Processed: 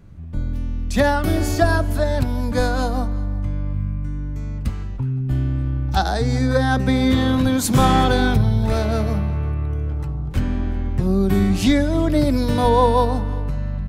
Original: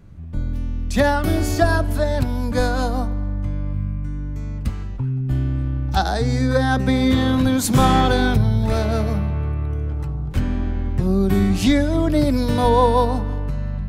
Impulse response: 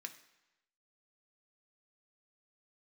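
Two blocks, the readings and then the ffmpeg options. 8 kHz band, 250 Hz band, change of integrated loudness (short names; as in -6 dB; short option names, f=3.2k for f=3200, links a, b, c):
0.0 dB, 0.0 dB, 0.0 dB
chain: -af "aecho=1:1:368:0.0708"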